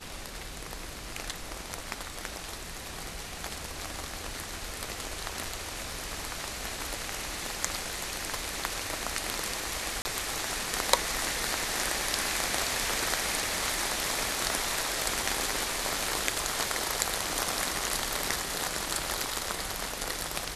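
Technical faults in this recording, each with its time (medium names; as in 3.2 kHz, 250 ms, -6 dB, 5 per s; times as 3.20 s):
10.02–10.05 s: dropout 30 ms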